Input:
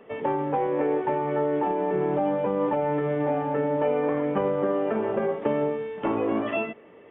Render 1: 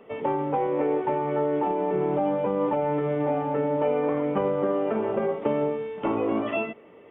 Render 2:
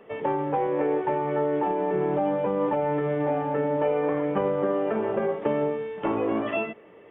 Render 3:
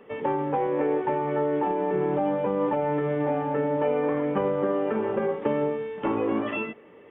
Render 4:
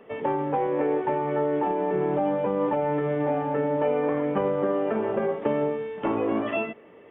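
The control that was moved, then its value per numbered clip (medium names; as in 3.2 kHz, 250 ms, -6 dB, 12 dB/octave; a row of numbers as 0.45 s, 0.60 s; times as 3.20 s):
band-stop, frequency: 1.7 kHz, 250 Hz, 670 Hz, 7.4 kHz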